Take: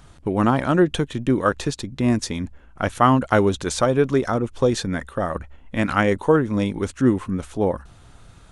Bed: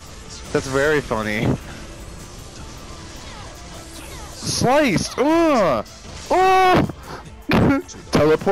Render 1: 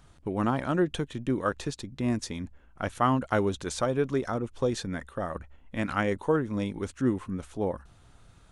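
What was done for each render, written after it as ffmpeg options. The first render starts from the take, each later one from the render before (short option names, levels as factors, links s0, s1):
-af "volume=0.376"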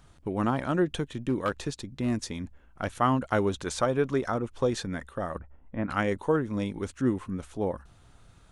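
-filter_complex "[0:a]asettb=1/sr,asplit=3[s0][s1][s2];[s0]atrim=end=1.144[s3];[s1]atrim=start=1.14:end=2.9,asetpts=PTS-STARTPTS,afade=t=in:d=0.004:c=qsin,afade=t=out:st=1.756:d=0.004:c=qsin,volume=10,asoftclip=hard,volume=0.1[s4];[s2]atrim=start=2.896[s5];[s3][s4]acrossfade=d=0.004:c1=hsin:c2=qsin[s6];[s6][s5]acrossfade=d=0.004:c1=qsin:c2=hsin,asettb=1/sr,asplit=3[s7][s8][s9];[s7]atrim=end=3.454[s10];[s8]atrim=start=3.45:end=4.88,asetpts=PTS-STARTPTS,afade=t=in:d=0.004:c=qsin,afade=t=out:st=1.426:d=0.004:c=qsin,equalizer=f=1200:w=0.61:g=3[s11];[s9]atrim=start=4.876[s12];[s10][s11]acrossfade=d=0.004:c1=hsin:c2=qsin[s13];[s13][s12]acrossfade=d=0.004:c1=qsin:c2=hsin,asettb=1/sr,asplit=3[s14][s15][s16];[s14]atrim=end=5.394[s17];[s15]atrim=start=5.39:end=5.9,asetpts=PTS-STARTPTS,afade=t=in:d=0.004:c=qsin,afade=t=out:st=0.506:d=0.004:c=qsin,lowpass=1300[s18];[s16]atrim=start=5.896[s19];[s17][s18]acrossfade=d=0.004:c1=hsin:c2=qsin[s20];[s20][s19]acrossfade=d=0.004:c1=qsin:c2=hsin"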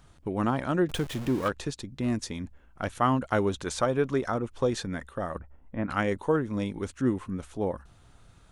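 -filter_complex "[0:a]asettb=1/sr,asplit=3[s0][s1][s2];[s0]atrim=end=0.894[s3];[s1]atrim=start=0.89:end=1.48,asetpts=PTS-STARTPTS,afade=t=in:d=0.004:c=qsin,afade=t=out:st=0.586:d=0.004:c=qsin,aeval=exprs='val(0)+0.5*0.0188*sgn(val(0))':c=same[s4];[s2]atrim=start=1.476[s5];[s3][s4]acrossfade=d=0.004:c1=hsin:c2=qsin[s6];[s6][s5]acrossfade=d=0.004:c1=qsin:c2=hsin"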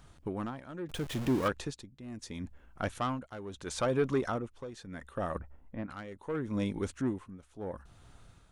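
-af "asoftclip=type=tanh:threshold=0.1,tremolo=f=0.74:d=0.84"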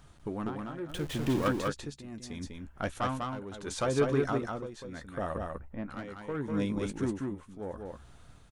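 -filter_complex "[0:a]asplit=2[s0][s1];[s1]adelay=14,volume=0.251[s2];[s0][s2]amix=inputs=2:normalize=0,aecho=1:1:197:0.668"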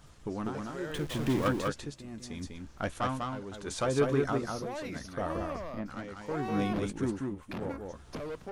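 -filter_complex "[1:a]volume=0.0631[s0];[0:a][s0]amix=inputs=2:normalize=0"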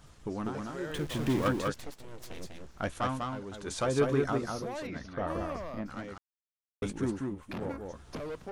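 -filter_complex "[0:a]asettb=1/sr,asplit=3[s0][s1][s2];[s0]atrim=end=1.744[s3];[s1]atrim=start=1.74:end=2.76,asetpts=PTS-STARTPTS,afade=t=in:d=0.004:c=qsin,afade=t=out:st=1.016:d=0.004:c=qsin,aeval=exprs='abs(val(0))':c=same[s4];[s2]atrim=start=2.756[s5];[s3][s4]acrossfade=d=0.004:c1=hsin:c2=qsin[s6];[s6][s5]acrossfade=d=0.004:c1=qsin:c2=hsin,asplit=3[s7][s8][s9];[s7]afade=t=out:st=4.86:d=0.02[s10];[s8]lowpass=3800,afade=t=in:st=4.86:d=0.02,afade=t=out:st=5.26:d=0.02[s11];[s9]afade=t=in:st=5.26:d=0.02[s12];[s10][s11][s12]amix=inputs=3:normalize=0,asplit=3[s13][s14][s15];[s13]atrim=end=6.18,asetpts=PTS-STARTPTS,afade=t=out:st=6.176:d=0.004:c=hsin[s16];[s14]atrim=start=6.18:end=6.82,asetpts=PTS-STARTPTS,volume=0[s17];[s15]atrim=start=6.82,asetpts=PTS-STARTPTS,afade=t=in:d=0.004:c=hsin[s18];[s16][s17][s18]concat=n=3:v=0:a=1"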